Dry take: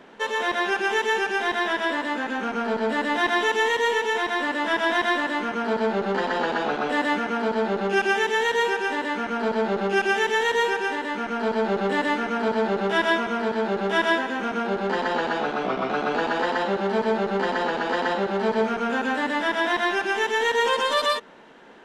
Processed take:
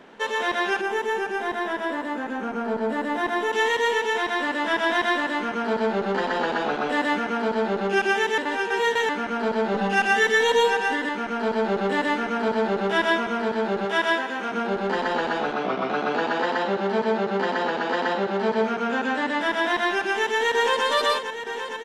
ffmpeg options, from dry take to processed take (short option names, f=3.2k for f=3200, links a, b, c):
-filter_complex "[0:a]asettb=1/sr,asplit=3[a][b][c];[a]atrim=end=0.814[d];[b]atrim=start=0.81:end=3.53,asetpts=PTS-STARTPTS,afade=t=in:d=0.004:c=qsin,afade=t=out:st=2.716:d=0.004:c=qsin,equalizer=f=3.9k:w=0.46:g=-9[e];[c]atrim=start=3.526[f];[d][e]acrossfade=d=0.004:c1=hsin:c2=qsin[g];[g][f]acrossfade=d=0.004:c1=qsin:c2=hsin,asettb=1/sr,asplit=3[h][i][j];[h]atrim=end=9.744[k];[i]atrim=start=9.74:end=11.09,asetpts=PTS-STARTPTS,afade=t=in:d=0.004:c=qsin,afade=t=out:st=1.346:d=0.004:c=qsin,aecho=1:1:4:0.93,atrim=end_sample=59535[l];[j]atrim=start=11.086[m];[k][l]acrossfade=d=0.004:c1=hsin:c2=qsin[n];[n][m]acrossfade=d=0.004:c1=qsin:c2=hsin,asettb=1/sr,asplit=3[o][p][q];[o]atrim=end=13.854[r];[p]atrim=start=13.85:end=14.52,asetpts=PTS-STARTPTS,afade=t=in:d=0.004:c=qsin,afade=t=out:st=0.666:d=0.004:c=qsin,lowshelf=f=230:g=-11[s];[q]atrim=start=14.516[t];[r][s]acrossfade=d=0.004:c1=hsin:c2=qsin[u];[u][t]acrossfade=d=0.004:c1=qsin:c2=hsin,asettb=1/sr,asplit=3[v][w][x];[v]atrim=end=15.534[y];[w]atrim=start=15.53:end=19.41,asetpts=PTS-STARTPTS,afade=t=in:d=0.004:c=qsin,afade=t=out:st=3.876:d=0.004:c=qsin,highpass=110,lowpass=7.7k[z];[x]atrim=start=19.406[aa];[y][z]acrossfade=d=0.004:c1=hsin:c2=qsin[ab];[ab][aa]acrossfade=d=0.004:c1=qsin:c2=hsin,asplit=2[ac][ad];[ad]afade=t=in:st=20.08:d=0.01,afade=t=out:st=20.84:d=0.01,aecho=0:1:460|920|1380|1840|2300|2760|3220|3680|4140|4600|5060|5520:0.334965|0.284721|0.242013|0.205711|0.174854|0.148626|0.126332|0.107382|0.0912749|0.0775837|0.0659461|0.0560542[ae];[ac][ae]amix=inputs=2:normalize=0,asplit=3[af][ag][ah];[af]atrim=end=8.382[ai];[ag]atrim=start=8.378:end=9.092,asetpts=PTS-STARTPTS,areverse[aj];[ah]atrim=start=9.088[ak];[ai][aj]acrossfade=d=0.004:c1=hsin:c2=hsin[al];[al][ak]acrossfade=d=0.004:c1=hsin:c2=hsin"